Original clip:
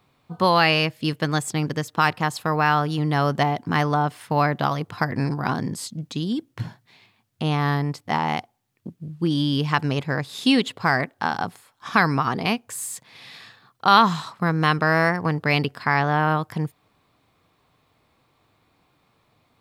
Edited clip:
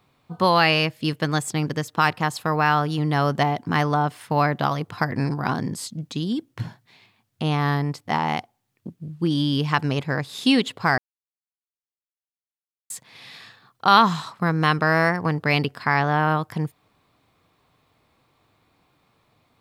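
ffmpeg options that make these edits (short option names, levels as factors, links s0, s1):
-filter_complex "[0:a]asplit=3[s0][s1][s2];[s0]atrim=end=10.98,asetpts=PTS-STARTPTS,afade=t=out:st=10.976:d=0.004:c=hsin[s3];[s1]atrim=start=10.98:end=12.9,asetpts=PTS-STARTPTS,volume=0[s4];[s2]atrim=start=12.9,asetpts=PTS-STARTPTS,afade=t=in:d=0.004:c=hsin[s5];[s3][s4][s5]concat=n=3:v=0:a=1"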